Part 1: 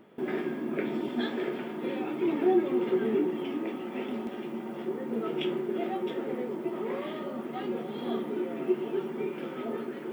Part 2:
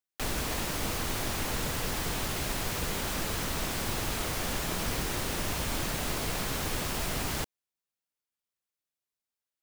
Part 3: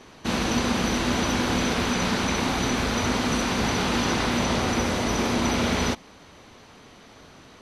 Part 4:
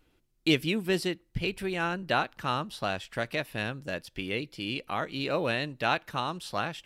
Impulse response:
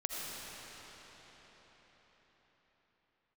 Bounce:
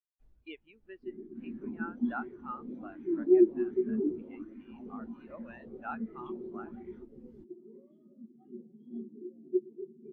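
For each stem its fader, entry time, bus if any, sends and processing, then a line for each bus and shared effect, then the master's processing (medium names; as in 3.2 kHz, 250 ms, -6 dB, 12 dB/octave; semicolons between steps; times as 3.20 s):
-6.0 dB, 0.85 s, no send, tone controls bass +12 dB, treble +15 dB
-4.0 dB, 0.00 s, no send, auto duck -6 dB, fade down 0.45 s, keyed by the fourth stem
-13.5 dB, 1.10 s, no send, treble shelf 7.4 kHz -10 dB; sweeping bell 1.3 Hz 440–2100 Hz +9 dB
-11.5 dB, 0.00 s, no send, send-on-delta sampling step -40.5 dBFS; high-pass 380 Hz 6 dB/octave; peaking EQ 1.3 kHz +12.5 dB 2.9 oct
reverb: none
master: spectral contrast expander 2.5:1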